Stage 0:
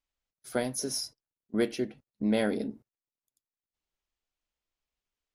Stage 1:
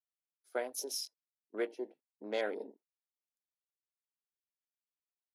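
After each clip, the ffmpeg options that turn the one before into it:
-af "afwtdn=0.00794,highpass=f=380:w=0.5412,highpass=f=380:w=1.3066,volume=0.596"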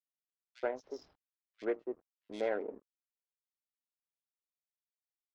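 -filter_complex "[0:a]aresample=16000,aeval=exprs='sgn(val(0))*max(abs(val(0))-0.00119,0)':c=same,aresample=44100,adynamicsmooth=sensitivity=3.5:basefreq=1200,acrossover=split=2900[s0][s1];[s0]adelay=80[s2];[s2][s1]amix=inputs=2:normalize=0,volume=1.26"

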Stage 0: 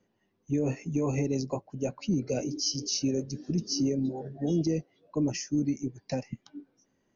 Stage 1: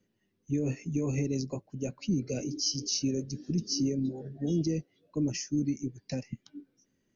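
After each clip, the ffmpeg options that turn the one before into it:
-af "equalizer=f=840:w=1:g=-11.5"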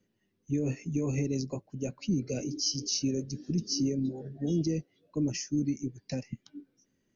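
-af anull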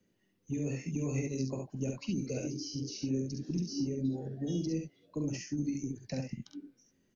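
-filter_complex "[0:a]acrossover=split=160|2400[s0][s1][s2];[s0]acompressor=threshold=0.00631:ratio=4[s3];[s1]acompressor=threshold=0.0178:ratio=4[s4];[s2]acompressor=threshold=0.00398:ratio=4[s5];[s3][s4][s5]amix=inputs=3:normalize=0,aecho=1:1:46|68:0.398|0.631"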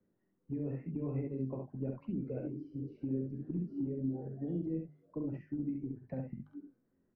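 -af "lowpass=f=1500:w=0.5412,lowpass=f=1500:w=1.3066,bandreject=f=50:t=h:w=6,bandreject=f=100:t=h:w=6,bandreject=f=150:t=h:w=6,bandreject=f=200:t=h:w=6,bandreject=f=250:t=h:w=6,volume=0.75"

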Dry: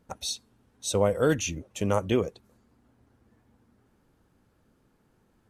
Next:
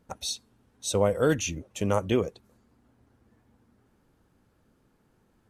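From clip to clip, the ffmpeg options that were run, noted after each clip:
-af anull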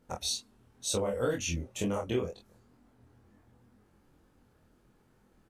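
-filter_complex "[0:a]flanger=delay=20:depth=6.6:speed=2.1,acompressor=threshold=0.0282:ratio=5,asplit=2[s0][s1];[s1]adelay=24,volume=0.708[s2];[s0][s2]amix=inputs=2:normalize=0,volume=1.26"

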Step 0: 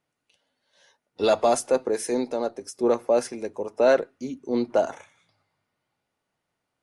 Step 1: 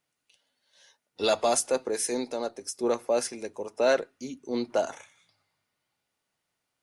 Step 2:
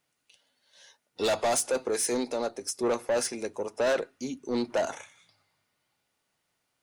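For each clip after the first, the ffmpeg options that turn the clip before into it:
-af "highshelf=f=2000:g=10,volume=0.531"
-af "asoftclip=type=tanh:threshold=0.0562,volume=1.5"

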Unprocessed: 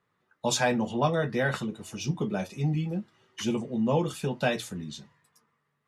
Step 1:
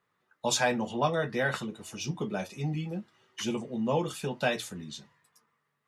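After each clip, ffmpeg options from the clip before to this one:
-af "lowshelf=f=350:g=-6"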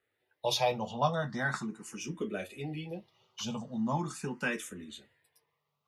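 -filter_complex "[0:a]asplit=2[s0][s1];[s1]afreqshift=0.4[s2];[s0][s2]amix=inputs=2:normalize=1"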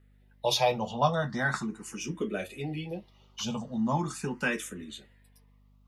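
-af "aeval=exprs='val(0)+0.000708*(sin(2*PI*50*n/s)+sin(2*PI*2*50*n/s)/2+sin(2*PI*3*50*n/s)/3+sin(2*PI*4*50*n/s)/4+sin(2*PI*5*50*n/s)/5)':c=same,volume=1.5"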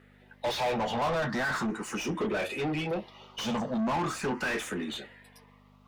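-filter_complex "[0:a]asplit=2[s0][s1];[s1]highpass=f=720:p=1,volume=50.1,asoftclip=type=tanh:threshold=0.251[s2];[s0][s2]amix=inputs=2:normalize=0,lowpass=f=1700:p=1,volume=0.501,volume=0.355"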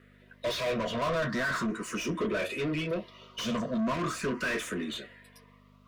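-af "asuperstop=centerf=820:order=20:qfactor=4.2"

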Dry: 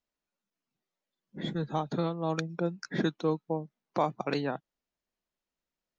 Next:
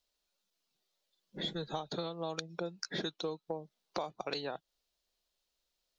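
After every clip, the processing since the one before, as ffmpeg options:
-af "equalizer=f=125:t=o:w=1:g=-10,equalizer=f=250:t=o:w=1:g=-10,equalizer=f=1000:t=o:w=1:g=-4,equalizer=f=2000:t=o:w=1:g=-6,equalizer=f=4000:t=o:w=1:g=8,acompressor=threshold=0.00891:ratio=6,volume=2.11"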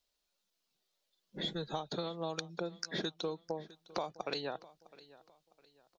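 -af "aecho=1:1:657|1314|1971:0.1|0.035|0.0123"

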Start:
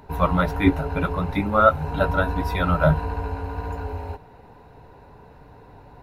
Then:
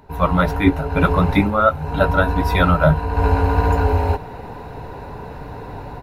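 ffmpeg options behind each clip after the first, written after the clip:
-af "dynaudnorm=f=130:g=3:m=5.96,volume=0.891"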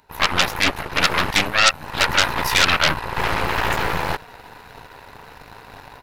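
-af "aeval=exprs='0.841*(cos(1*acos(clip(val(0)/0.841,-1,1)))-cos(1*PI/2))+0.335*(cos(8*acos(clip(val(0)/0.841,-1,1)))-cos(8*PI/2))':c=same,tiltshelf=f=1100:g=-9.5,volume=0.473"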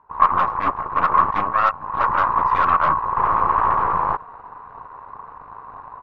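-af "lowpass=f=1100:t=q:w=11,volume=0.501"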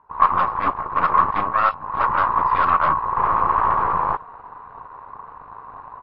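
-ar 12000 -c:a libmp3lame -b:a 32k

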